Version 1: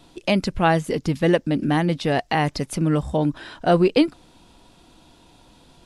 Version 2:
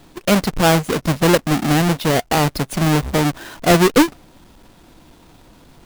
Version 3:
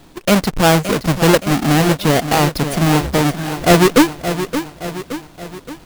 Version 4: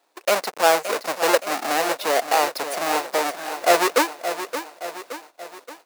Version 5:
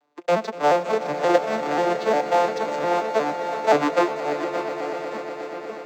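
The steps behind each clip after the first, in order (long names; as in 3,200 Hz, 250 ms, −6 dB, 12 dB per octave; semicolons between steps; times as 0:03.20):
each half-wave held at its own peak
feedback echo at a low word length 571 ms, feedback 55%, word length 7 bits, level −10 dB; level +2 dB
noise gate −36 dBFS, range −13 dB; four-pole ladder high-pass 430 Hz, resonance 25%; parametric band 3,200 Hz −5 dB 0.22 octaves; level +1.5 dB
vocoder with an arpeggio as carrier minor triad, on D3, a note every 177 ms; echo that builds up and dies away 121 ms, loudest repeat 5, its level −15 dB; IMA ADPCM 176 kbit/s 44,100 Hz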